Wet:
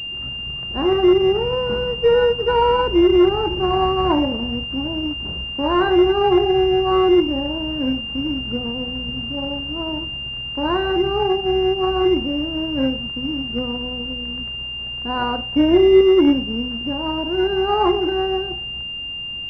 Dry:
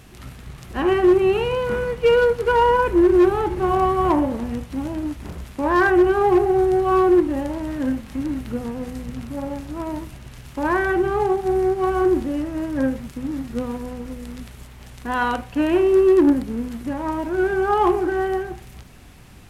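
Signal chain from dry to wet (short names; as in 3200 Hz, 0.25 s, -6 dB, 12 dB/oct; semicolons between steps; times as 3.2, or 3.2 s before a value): 15.56–16.01 tilt shelf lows +5 dB, about 900 Hz; pulse-width modulation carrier 2800 Hz; gain +1 dB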